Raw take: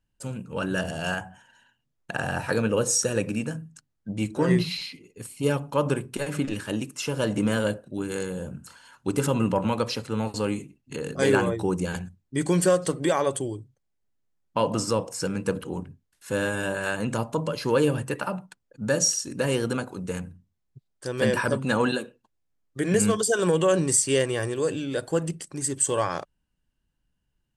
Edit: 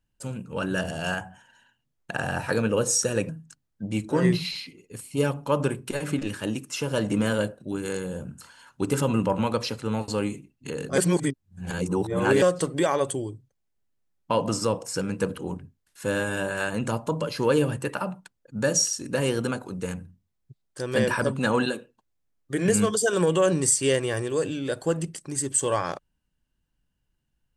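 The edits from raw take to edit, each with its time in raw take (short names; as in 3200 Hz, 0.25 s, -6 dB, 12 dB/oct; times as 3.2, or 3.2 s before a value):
3.29–3.55 cut
11.24–12.68 reverse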